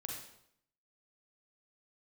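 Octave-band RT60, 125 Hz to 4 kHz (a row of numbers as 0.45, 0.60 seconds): 0.75, 0.80, 0.75, 0.70, 0.65, 0.65 seconds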